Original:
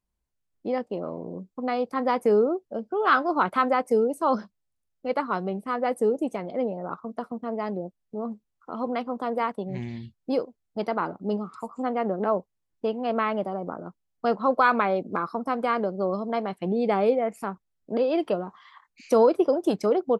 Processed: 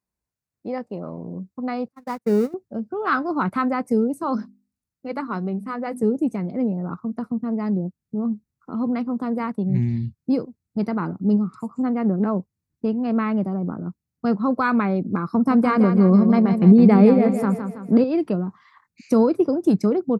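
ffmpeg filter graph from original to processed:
-filter_complex "[0:a]asettb=1/sr,asplit=3[s0][s1][s2];[s0]atrim=end=1.884[s3];[s1]atrim=start=1.88:end=2.54,asetpts=PTS-STARTPTS,afade=t=in:d=0.004:c=qsin,afade=t=out:st=0.656:d=0.004:c=qsin,aeval=exprs='val(0)+0.5*0.0316*sgn(val(0))':c=same,agate=range=0.00251:threshold=0.0891:ratio=16:release=100:detection=peak[s4];[s2]atrim=start=2.536[s5];[s3][s4]acrossfade=d=0.004:c1=hsin:c2=qsin[s6];[s6][s5]acrossfade=d=0.004:c1=qsin:c2=hsin,asettb=1/sr,asplit=3[s7][s8][s9];[s7]atrim=end=4.234[s10];[s8]atrim=start=4.23:end=6.03,asetpts=PTS-STARTPTS,afade=t=in:d=0.004:c=qsin,afade=t=out:st=1.796:d=0.004:c=qsin,equalizer=f=110:t=o:w=1.9:g=-7.5,bandreject=f=50:t=h:w=6,bandreject=f=100:t=h:w=6,bandreject=f=150:t=h:w=6,bandreject=f=200:t=h:w=6,bandreject=f=250:t=h:w=6,bandreject=f=300:t=h:w=6,bandreject=f=350:t=h:w=6[s11];[s9]atrim=start=6.026[s12];[s10][s11]acrossfade=d=0.004:c1=hsin:c2=qsin[s13];[s13][s12]acrossfade=d=0.004:c1=qsin:c2=hsin,asettb=1/sr,asplit=3[s14][s15][s16];[s14]atrim=end=15.334[s17];[s15]atrim=start=15.33:end=18.04,asetpts=PTS-STARTPTS,afade=t=in:d=0.004:c=qsin,afade=t=out:st=2.706:d=0.004:c=qsin,acontrast=29,aecho=1:1:163|326|489|652|815:0.398|0.187|0.0879|0.0413|0.0194,atrim=end_sample=119511[s18];[s16]atrim=start=18.036[s19];[s17][s18]acrossfade=d=0.004:c1=hsin:c2=qsin[s20];[s20][s19]acrossfade=d=0.004:c1=qsin:c2=hsin,asubboost=boost=9.5:cutoff=190,highpass=100,equalizer=f=3200:t=o:w=0.28:g=-11.5"

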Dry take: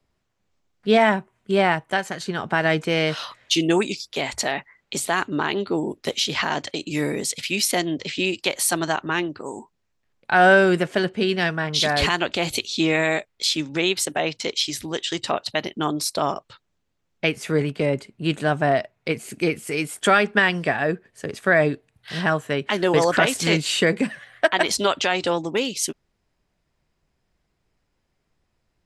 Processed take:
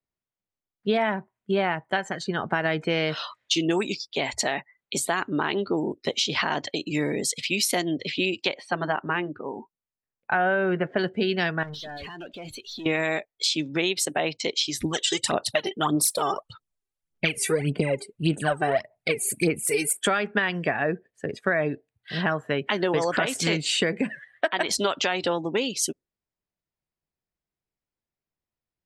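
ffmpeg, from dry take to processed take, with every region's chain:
-filter_complex "[0:a]asettb=1/sr,asplit=3[s0][s1][s2];[s0]atrim=end=8.544[s3];[s1]atrim=start=8.54:end=10.99,asetpts=PTS-STARTPTS,afade=t=in:d=0.004:c=qsin,afade=t=out:st=2.446:d=0.004:c=qsin,lowpass=2500,bandreject=f=330:w=10[s4];[s2]atrim=start=10.986[s5];[s3][s4]acrossfade=d=0.004:c1=hsin:c2=qsin[s6];[s6][s5]acrossfade=d=0.004:c1=qsin:c2=hsin,asettb=1/sr,asplit=3[s7][s8][s9];[s7]atrim=end=11.634[s10];[s8]atrim=start=11.63:end=12.86,asetpts=PTS-STARTPTS,afade=t=in:d=0.004:c=qsin,afade=t=out:st=1.226:d=0.004:c=qsin,acompressor=threshold=0.0562:ratio=12:attack=3.2:release=140:knee=1:detection=peak,aeval=exprs='(tanh(44.7*val(0)+0.25)-tanh(0.25))/44.7':c=same[s11];[s9]atrim=start=12.856[s12];[s10][s11]acrossfade=d=0.004:c1=hsin:c2=qsin[s13];[s13][s12]acrossfade=d=0.004:c1=qsin:c2=hsin,asettb=1/sr,asplit=3[s14][s15][s16];[s14]atrim=end=14.814[s17];[s15]atrim=start=14.81:end=19.93,asetpts=PTS-STARTPTS,afade=t=in:d=0.004:c=qsin,afade=t=out:st=5.116:d=0.004:c=qsin,equalizer=f=10000:t=o:w=0.73:g=15,aphaser=in_gain=1:out_gain=1:delay=2.6:decay=0.71:speed=1.7:type=sinusoidal[s18];[s16]atrim=start=19.926[s19];[s17][s18]acrossfade=d=0.004:c1=hsin:c2=qsin[s20];[s20][s19]acrossfade=d=0.004:c1=qsin:c2=hsin,afftdn=nr=19:nf=-38,lowshelf=f=65:g=-6.5,acompressor=threshold=0.1:ratio=6"

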